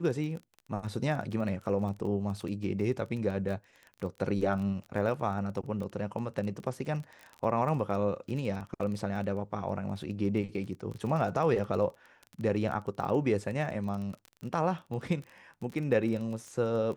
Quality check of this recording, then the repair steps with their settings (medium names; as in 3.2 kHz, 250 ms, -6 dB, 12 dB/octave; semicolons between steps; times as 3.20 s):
crackle 20 per s -36 dBFS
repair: de-click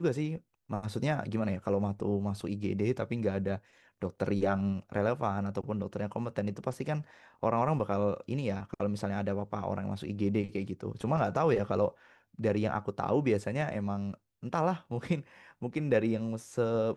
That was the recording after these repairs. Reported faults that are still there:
nothing left